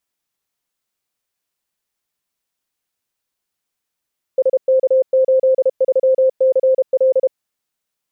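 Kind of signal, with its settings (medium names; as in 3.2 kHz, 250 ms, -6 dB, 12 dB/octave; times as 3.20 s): Morse "SK83CL" 32 wpm 523 Hz -9.5 dBFS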